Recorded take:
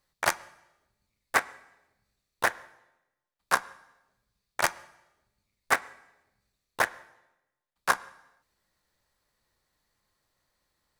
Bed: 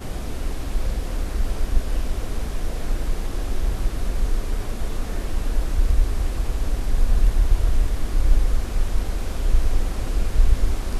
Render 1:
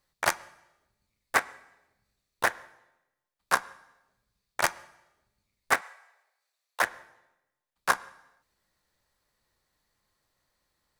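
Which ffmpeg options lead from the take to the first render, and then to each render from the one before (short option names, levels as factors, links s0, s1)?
-filter_complex "[0:a]asettb=1/sr,asplit=3[s0][s1][s2];[s0]atrim=end=5.814[s3];[s1]atrim=start=5.81:end=6.82,asetpts=PTS-STARTPTS,afade=t=in:d=0.004:c=qsin,afade=t=out:st=1.006:d=0.004:c=qsin,highpass=f=570:w=0.5412,highpass=f=570:w=1.3066[s4];[s2]atrim=start=6.816[s5];[s3][s4]acrossfade=d=0.004:c1=hsin:c2=qsin[s6];[s6][s5]acrossfade=d=0.004:c1=qsin:c2=hsin"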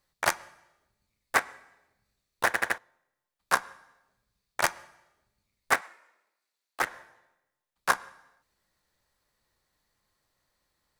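-filter_complex "[0:a]asettb=1/sr,asplit=3[s0][s1][s2];[s0]atrim=end=5.864[s3];[s1]atrim=start=5.86:end=6.87,asetpts=PTS-STARTPTS,afade=t=in:d=0.004:c=qsin,afade=t=out:st=1.006:d=0.004:c=qsin,aeval=exprs='val(0)*sin(2*PI*200*n/s)':c=same[s4];[s2]atrim=start=6.866[s5];[s3][s4]acrossfade=d=0.004:c1=hsin:c2=qsin[s6];[s6][s5]acrossfade=d=0.004:c1=qsin:c2=hsin,asplit=5[s7][s8][s9][s10][s11];[s7]atrim=end=2.542[s12];[s8]atrim=start=2.458:end=2.542[s13];[s9]atrim=start=2.458:end=2.542[s14];[s10]atrim=start=2.458:end=2.542[s15];[s11]atrim=start=2.778[s16];[s12][s13]acrossfade=d=0.004:c1=hsin:c2=hsin[s17];[s17][s14]acrossfade=d=0.004:c1=hsin:c2=hsin[s18];[s18][s15]acrossfade=d=0.004:c1=hsin:c2=hsin[s19];[s19][s16]acrossfade=d=0.004:c1=hsin:c2=hsin"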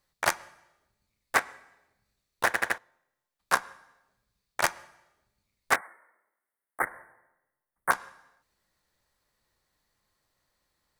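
-filter_complex "[0:a]asettb=1/sr,asplit=3[s0][s1][s2];[s0]atrim=end=5.764[s3];[s1]atrim=start=5.76:end=7.91,asetpts=PTS-STARTPTS,afade=t=in:d=0.004:c=qsin,afade=t=out:st=2.146:d=0.004:c=qsin,asuperstop=centerf=4400:order=20:qfactor=0.7[s4];[s2]atrim=start=7.906[s5];[s3][s4]acrossfade=d=0.004:c1=hsin:c2=qsin[s6];[s6][s5]acrossfade=d=0.004:c1=qsin:c2=hsin"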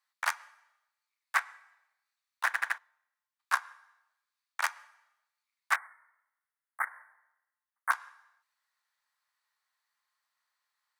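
-af "highpass=f=1000:w=0.5412,highpass=f=1000:w=1.3066,highshelf=f=2500:g=-8.5"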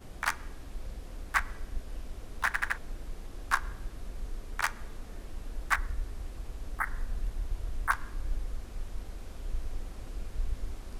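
-filter_complex "[1:a]volume=0.15[s0];[0:a][s0]amix=inputs=2:normalize=0"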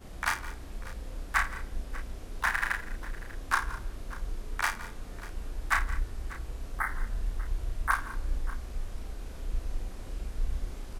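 -filter_complex "[0:a]asplit=2[s0][s1];[s1]adelay=33,volume=0.631[s2];[s0][s2]amix=inputs=2:normalize=0,asplit=2[s3][s4];[s4]aecho=0:1:52|168|203|592:0.251|0.133|0.112|0.126[s5];[s3][s5]amix=inputs=2:normalize=0"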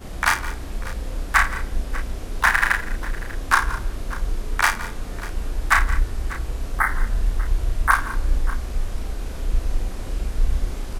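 -af "volume=3.55,alimiter=limit=0.708:level=0:latency=1"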